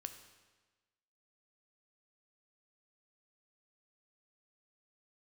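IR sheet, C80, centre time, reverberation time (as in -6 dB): 11.0 dB, 16 ms, 1.3 s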